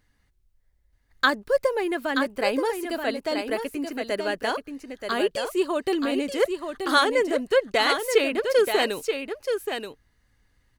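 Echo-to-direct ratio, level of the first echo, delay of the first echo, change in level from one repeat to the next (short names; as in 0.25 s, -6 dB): -6.5 dB, -6.5 dB, 0.929 s, no steady repeat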